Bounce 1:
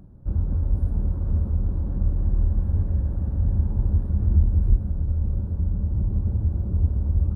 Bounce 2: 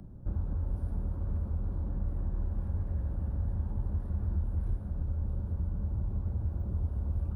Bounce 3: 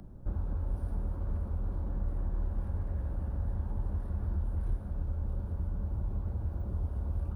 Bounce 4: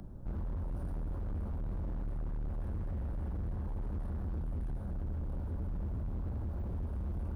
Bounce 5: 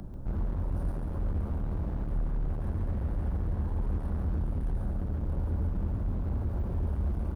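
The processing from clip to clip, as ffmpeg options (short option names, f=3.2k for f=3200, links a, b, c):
-filter_complex "[0:a]acrossover=split=110|600[a][b][c];[a]acompressor=threshold=-32dB:ratio=4[d];[b]acompressor=threshold=-42dB:ratio=4[e];[c]acompressor=threshold=-55dB:ratio=4[f];[d][e][f]amix=inputs=3:normalize=0"
-af "equalizer=f=120:t=o:w=2.9:g=-6.5,volume=3.5dB"
-af "asoftclip=type=hard:threshold=-35.5dB,volume=1.5dB"
-af "aecho=1:1:140:0.501,volume=5.5dB"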